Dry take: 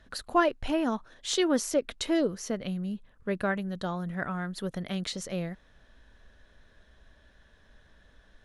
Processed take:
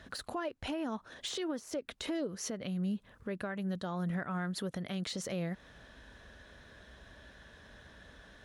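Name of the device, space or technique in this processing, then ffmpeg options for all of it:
podcast mastering chain: -af "highpass=66,deesser=0.85,acompressor=threshold=-39dB:ratio=3,alimiter=level_in=11.5dB:limit=-24dB:level=0:latency=1:release=197,volume=-11.5dB,volume=7.5dB" -ar 44100 -c:a libmp3lame -b:a 96k

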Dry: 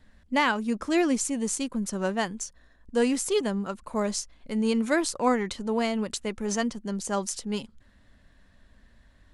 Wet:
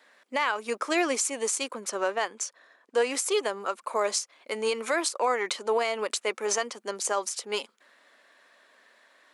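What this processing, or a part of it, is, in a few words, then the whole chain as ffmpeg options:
laptop speaker: -filter_complex "[0:a]highpass=frequency=410:width=0.5412,highpass=frequency=410:width=1.3066,equalizer=frequency=1200:width_type=o:width=0.43:gain=4,equalizer=frequency=2300:width_type=o:width=0.23:gain=5,alimiter=limit=-21.5dB:level=0:latency=1:release=181,asettb=1/sr,asplit=3[link_01][link_02][link_03];[link_01]atrim=end=1.744[link_04];[link_02]atrim=start=1.74:end=3.11,asetpts=PTS-STARTPTS,afade=type=in:duration=0.004:curve=qsin,afade=type=out:start_time=1.366:duration=0.004:curve=qsin,highshelf=frequency=8500:gain=-9.5[link_05];[link_03]atrim=start=3.106[link_06];[link_04][link_05]acrossfade=duration=0.004:curve1=hsin:curve2=qsin[link_07];[link_07][link_06]acrossfade=duration=0.004:curve1=qsin:curve2=hsin,volume=6dB"

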